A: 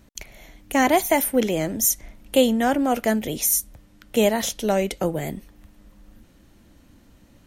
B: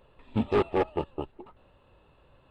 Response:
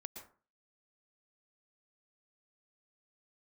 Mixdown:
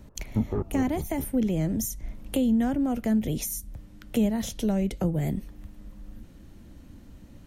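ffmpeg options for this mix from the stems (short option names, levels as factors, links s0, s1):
-filter_complex "[0:a]volume=0.794[s0];[1:a]lowpass=f=1600:w=0.5412,lowpass=f=1600:w=1.3066,volume=0.668[s1];[s0][s1]amix=inputs=2:normalize=0,lowshelf=f=350:g=9,acrossover=split=220[s2][s3];[s3]acompressor=threshold=0.0282:ratio=6[s4];[s2][s4]amix=inputs=2:normalize=0"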